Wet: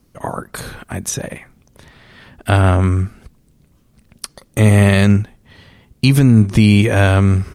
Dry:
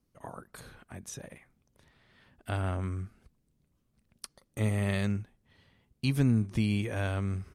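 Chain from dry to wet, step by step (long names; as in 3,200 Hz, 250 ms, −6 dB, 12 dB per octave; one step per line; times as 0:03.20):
0:00.60–0:01.11: high-shelf EQ 8,300 Hz +5 dB
boost into a limiter +20.5 dB
level −1 dB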